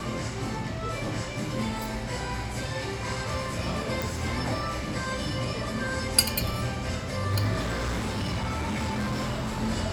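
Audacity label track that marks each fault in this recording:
4.020000	4.020000	pop
7.600000	9.620000	clipped -25.5 dBFS

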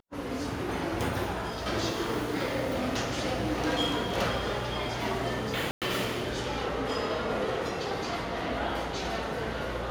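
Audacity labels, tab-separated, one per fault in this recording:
5.710000	5.820000	dropout 107 ms

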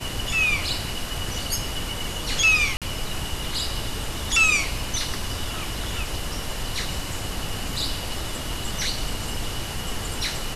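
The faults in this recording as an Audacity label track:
2.770000	2.820000	dropout 47 ms

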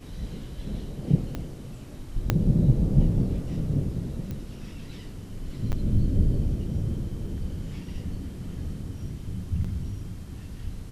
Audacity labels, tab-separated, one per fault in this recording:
1.350000	1.350000	pop -19 dBFS
2.300000	2.300000	pop -8 dBFS
4.310000	4.310000	pop -22 dBFS
5.720000	5.730000	dropout 8.4 ms
7.270000	7.270000	dropout 3.1 ms
9.640000	9.640000	dropout 4.8 ms

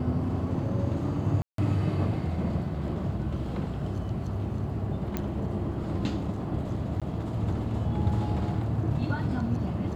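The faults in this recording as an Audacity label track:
1.420000	1.580000	dropout 163 ms
5.170000	5.170000	pop -15 dBFS
7.000000	7.020000	dropout 16 ms

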